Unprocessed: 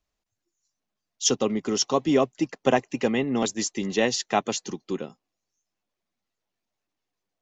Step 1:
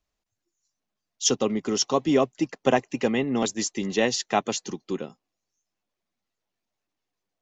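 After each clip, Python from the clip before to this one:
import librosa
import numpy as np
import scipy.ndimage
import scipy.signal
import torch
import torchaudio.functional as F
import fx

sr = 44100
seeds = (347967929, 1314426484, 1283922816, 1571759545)

y = x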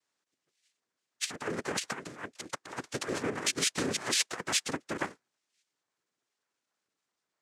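y = fx.noise_vocoder(x, sr, seeds[0], bands=3)
y = fx.over_compress(y, sr, threshold_db=-28.0, ratio=-0.5)
y = fx.low_shelf(y, sr, hz=240.0, db=-12.0)
y = y * 10.0 ** (-2.0 / 20.0)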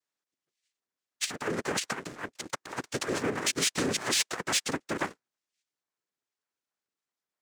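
y = fx.leveller(x, sr, passes=2)
y = y * 10.0 ** (-4.0 / 20.0)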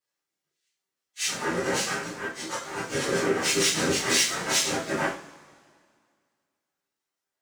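y = fx.phase_scramble(x, sr, seeds[1], window_ms=100)
y = fx.rev_double_slope(y, sr, seeds[2], early_s=0.4, late_s=2.1, knee_db=-21, drr_db=-3.5)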